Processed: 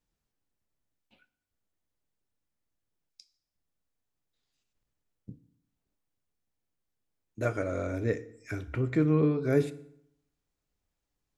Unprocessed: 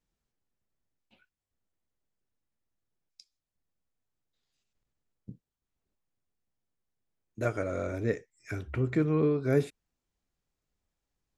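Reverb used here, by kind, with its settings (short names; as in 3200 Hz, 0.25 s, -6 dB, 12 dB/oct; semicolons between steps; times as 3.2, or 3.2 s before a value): FDN reverb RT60 0.72 s, low-frequency decay 1.1×, high-frequency decay 0.8×, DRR 12.5 dB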